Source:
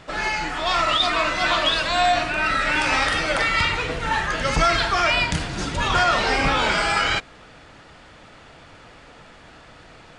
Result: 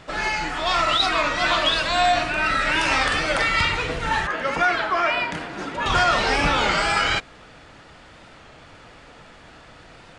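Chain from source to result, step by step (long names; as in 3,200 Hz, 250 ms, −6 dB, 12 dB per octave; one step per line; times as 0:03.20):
0:04.27–0:05.86: three-way crossover with the lows and the highs turned down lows −19 dB, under 210 Hz, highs −13 dB, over 2,600 Hz
wow of a warped record 33 1/3 rpm, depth 100 cents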